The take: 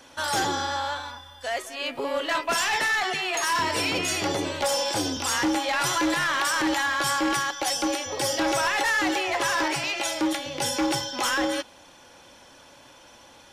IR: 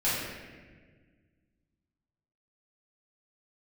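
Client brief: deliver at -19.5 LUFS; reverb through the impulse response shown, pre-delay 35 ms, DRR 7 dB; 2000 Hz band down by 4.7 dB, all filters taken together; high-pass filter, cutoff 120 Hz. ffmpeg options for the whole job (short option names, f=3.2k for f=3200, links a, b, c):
-filter_complex "[0:a]highpass=120,equalizer=f=2k:t=o:g=-6,asplit=2[a][b];[1:a]atrim=start_sample=2205,adelay=35[c];[b][c]afir=irnorm=-1:irlink=0,volume=-18dB[d];[a][d]amix=inputs=2:normalize=0,volume=6.5dB"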